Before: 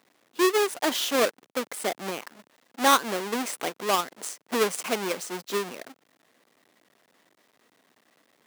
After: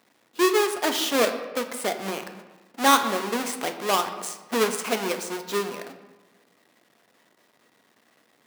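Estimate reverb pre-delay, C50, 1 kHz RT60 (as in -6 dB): 4 ms, 9.0 dB, 1.2 s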